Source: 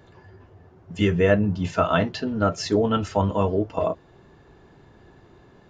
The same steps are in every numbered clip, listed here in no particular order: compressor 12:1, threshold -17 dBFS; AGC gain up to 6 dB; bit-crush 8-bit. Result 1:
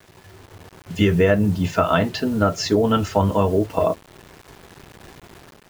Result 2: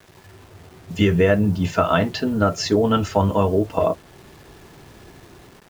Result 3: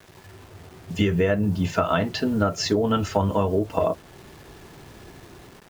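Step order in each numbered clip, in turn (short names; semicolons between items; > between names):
bit-crush > compressor > AGC; compressor > AGC > bit-crush; AGC > bit-crush > compressor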